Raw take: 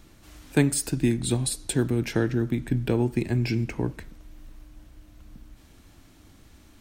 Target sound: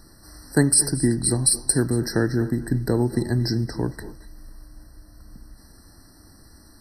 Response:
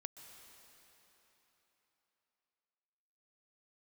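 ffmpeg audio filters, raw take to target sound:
-filter_complex "[0:a]highshelf=f=3.4k:g=10[a];[1:a]atrim=start_sample=2205,atrim=end_sample=6174,asetrate=23814,aresample=44100[b];[a][b]afir=irnorm=-1:irlink=0,afftfilt=real='re*eq(mod(floor(b*sr/1024/2000),2),0)':imag='im*eq(mod(floor(b*sr/1024/2000),2),0)':win_size=1024:overlap=0.75,volume=4.5dB"

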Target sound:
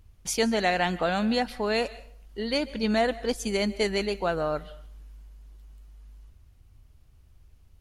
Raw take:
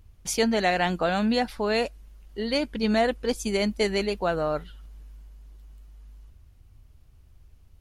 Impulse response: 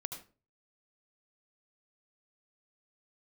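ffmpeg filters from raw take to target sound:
-filter_complex "[0:a]asplit=2[a][b];[1:a]atrim=start_sample=2205,asetrate=23814,aresample=44100,lowshelf=f=480:g=-11[c];[b][c]afir=irnorm=-1:irlink=0,volume=-13dB[d];[a][d]amix=inputs=2:normalize=0,volume=-2.5dB"

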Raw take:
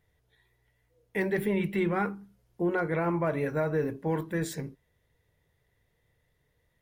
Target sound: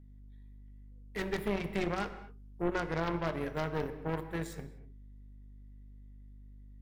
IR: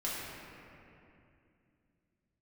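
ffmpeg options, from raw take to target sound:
-filter_complex "[0:a]aeval=exprs='val(0)+0.00891*(sin(2*PI*50*n/s)+sin(2*PI*2*50*n/s)/2+sin(2*PI*3*50*n/s)/3+sin(2*PI*4*50*n/s)/4+sin(2*PI*5*50*n/s)/5)':c=same,aeval=exprs='0.133*(cos(1*acos(clip(val(0)/0.133,-1,1)))-cos(1*PI/2))+0.0596*(cos(4*acos(clip(val(0)/0.133,-1,1)))-cos(4*PI/2))+0.0473*(cos(6*acos(clip(val(0)/0.133,-1,1)))-cos(6*PI/2))+0.00841*(cos(7*acos(clip(val(0)/0.133,-1,1)))-cos(7*PI/2))+0.00841*(cos(8*acos(clip(val(0)/0.133,-1,1)))-cos(8*PI/2))':c=same,asplit=2[a][b];[1:a]atrim=start_sample=2205,afade=t=out:st=0.3:d=0.01,atrim=end_sample=13671[c];[b][c]afir=irnorm=-1:irlink=0,volume=-11.5dB[d];[a][d]amix=inputs=2:normalize=0,volume=-8.5dB"

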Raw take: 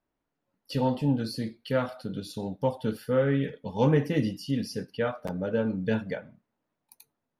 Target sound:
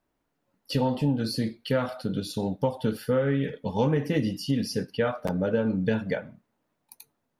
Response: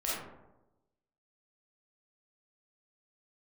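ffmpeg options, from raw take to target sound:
-af "acompressor=threshold=-26dB:ratio=6,volume=5.5dB"

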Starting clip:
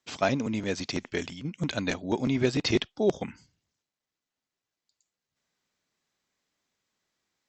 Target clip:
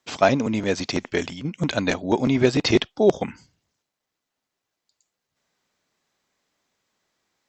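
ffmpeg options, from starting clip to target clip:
-af "equalizer=f=710:w=0.63:g=4,volume=5dB"

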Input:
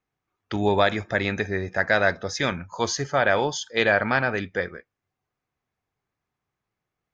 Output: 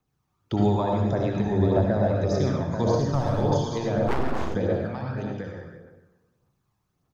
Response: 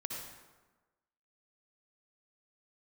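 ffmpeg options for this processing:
-filter_complex "[0:a]asettb=1/sr,asplit=3[a][b][c];[a]atrim=end=1.474[d];[b]atrim=start=1.47:end=2.17,asetpts=PTS-STARTPTS,afade=t=in:d=0.004:c=qsin,afade=t=out:st=0.696:d=0.004:c=qsin,tiltshelf=f=970:g=9.5[e];[c]atrim=start=2.166[f];[d][e]acrossfade=d=0.004:c1=hsin:c2=qsin[g];[g][f]acrossfade=d=0.004:c1=qsin:c2=hsin,acrossover=split=420|4400[h][i][j];[h]acompressor=threshold=-35dB:ratio=4[k];[i]acompressor=threshold=-24dB:ratio=4[l];[j]acompressor=threshold=-43dB:ratio=4[m];[k][l][m]amix=inputs=3:normalize=0,asettb=1/sr,asplit=3[n][o][p];[n]atrim=end=2.994[q];[o]atrim=start=2.99:end=3.43,asetpts=PTS-STARTPTS,afade=t=in:d=0.004:c=qsin,afade=t=out:st=0.436:d=0.004:c=qsin,aeval=exprs='clip(val(0),-1,0.0422)':c=same[r];[p]atrim=start=3.426[s];[q][r]acrossfade=d=0.004:c1=hsin:c2=qsin[t];[t][s]acrossfade=d=0.004:c1=qsin:c2=hsin,aecho=1:1:454|835:0.112|0.398,acrossover=split=860[u][v];[v]acompressor=threshold=-44dB:ratio=6[w];[u][w]amix=inputs=2:normalize=0[x];[1:a]atrim=start_sample=2205[y];[x][y]afir=irnorm=-1:irlink=0,aphaser=in_gain=1:out_gain=1:delay=1.2:decay=0.36:speed=1.7:type=triangular,equalizer=f=125:t=o:w=1:g=3,equalizer=f=500:t=o:w=1:g=-4,equalizer=f=2k:t=o:w=1:g=-10,asplit=3[z][aa][ab];[z]afade=t=out:st=4.07:d=0.02[ac];[aa]aeval=exprs='abs(val(0))':c=same,afade=t=in:st=4.07:d=0.02,afade=t=out:st=4.54:d=0.02[ad];[ab]afade=t=in:st=4.54:d=0.02[ae];[ac][ad][ae]amix=inputs=3:normalize=0,volume=7.5dB"

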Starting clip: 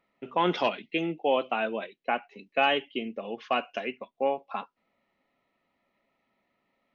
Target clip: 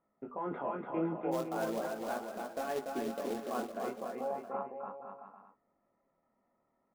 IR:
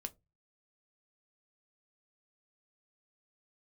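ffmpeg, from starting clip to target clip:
-filter_complex "[0:a]lowpass=f=1.4k:w=0.5412,lowpass=f=1.4k:w=1.3066,alimiter=level_in=1dB:limit=-24dB:level=0:latency=1:release=42,volume=-1dB,flanger=delay=18.5:depth=6.6:speed=0.39,asplit=3[a][b][c];[a]afade=t=out:st=1.31:d=0.02[d];[b]acrusher=bits=3:mode=log:mix=0:aa=0.000001,afade=t=in:st=1.31:d=0.02,afade=t=out:st=3.68:d=0.02[e];[c]afade=t=in:st=3.68:d=0.02[f];[d][e][f]amix=inputs=3:normalize=0,aecho=1:1:290|507.5|670.6|793|884.7:0.631|0.398|0.251|0.158|0.1"

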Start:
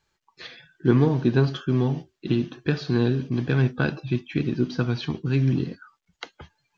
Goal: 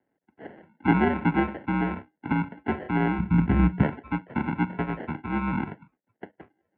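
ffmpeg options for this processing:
-filter_complex "[0:a]acrusher=samples=35:mix=1:aa=0.000001,highpass=f=220:t=q:w=0.5412,highpass=f=220:t=q:w=1.307,lowpass=f=2.5k:t=q:w=0.5176,lowpass=f=2.5k:t=q:w=0.7071,lowpass=f=2.5k:t=q:w=1.932,afreqshift=-69,asplit=3[a][b][c];[a]afade=t=out:st=3.18:d=0.02[d];[b]asubboost=boost=7:cutoff=200,afade=t=in:st=3.18:d=0.02,afade=t=out:st=3.82:d=0.02[e];[c]afade=t=in:st=3.82:d=0.02[f];[d][e][f]amix=inputs=3:normalize=0"

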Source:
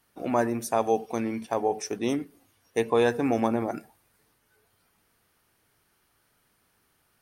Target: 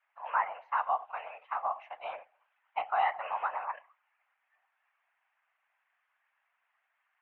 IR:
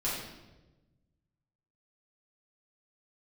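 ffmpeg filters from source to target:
-af "highpass=f=450:t=q:w=0.5412,highpass=f=450:t=q:w=1.307,lowpass=f=2.4k:t=q:w=0.5176,lowpass=f=2.4k:t=q:w=0.7071,lowpass=f=2.4k:t=q:w=1.932,afreqshift=320,afftfilt=real='hypot(re,im)*cos(2*PI*random(0))':imag='hypot(re,im)*sin(2*PI*random(1))':win_size=512:overlap=0.75,volume=1.5dB"

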